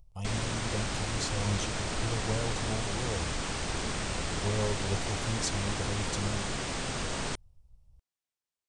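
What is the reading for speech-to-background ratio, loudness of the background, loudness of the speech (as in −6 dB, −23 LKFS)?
−2.0 dB, −34.0 LKFS, −36.0 LKFS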